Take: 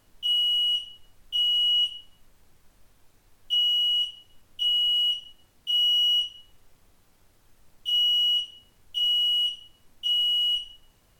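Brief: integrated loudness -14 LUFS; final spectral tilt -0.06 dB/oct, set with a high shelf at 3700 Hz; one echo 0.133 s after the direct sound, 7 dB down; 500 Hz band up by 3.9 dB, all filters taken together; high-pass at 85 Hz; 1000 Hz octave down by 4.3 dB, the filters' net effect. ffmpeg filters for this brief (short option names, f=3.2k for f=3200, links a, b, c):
-af "highpass=85,equalizer=f=500:t=o:g=7,equalizer=f=1k:t=o:g=-8,highshelf=f=3.7k:g=-3.5,aecho=1:1:133:0.447,volume=12dB"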